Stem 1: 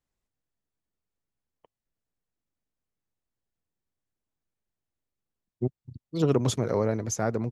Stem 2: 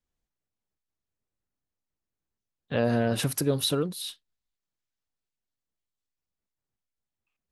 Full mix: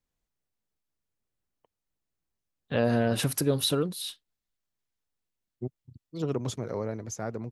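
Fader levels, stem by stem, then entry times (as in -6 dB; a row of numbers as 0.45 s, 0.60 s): -7.0 dB, 0.0 dB; 0.00 s, 0.00 s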